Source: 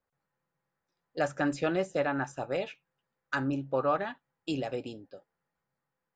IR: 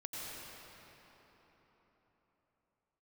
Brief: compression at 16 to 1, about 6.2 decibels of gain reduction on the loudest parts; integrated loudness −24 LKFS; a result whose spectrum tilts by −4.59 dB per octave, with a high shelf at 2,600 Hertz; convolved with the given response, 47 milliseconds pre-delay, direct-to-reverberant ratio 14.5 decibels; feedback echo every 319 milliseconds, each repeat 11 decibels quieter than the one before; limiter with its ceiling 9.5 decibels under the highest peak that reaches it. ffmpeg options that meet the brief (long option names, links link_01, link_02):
-filter_complex "[0:a]highshelf=frequency=2600:gain=3,acompressor=threshold=-29dB:ratio=16,alimiter=level_in=4dB:limit=-24dB:level=0:latency=1,volume=-4dB,aecho=1:1:319|638|957:0.282|0.0789|0.0221,asplit=2[link_01][link_02];[1:a]atrim=start_sample=2205,adelay=47[link_03];[link_02][link_03]afir=irnorm=-1:irlink=0,volume=-15dB[link_04];[link_01][link_04]amix=inputs=2:normalize=0,volume=15dB"